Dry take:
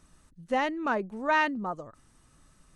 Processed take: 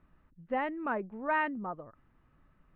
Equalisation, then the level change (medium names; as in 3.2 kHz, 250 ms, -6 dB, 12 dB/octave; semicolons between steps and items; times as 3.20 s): low-pass 2.5 kHz 24 dB/octave; distance through air 67 m; -4.5 dB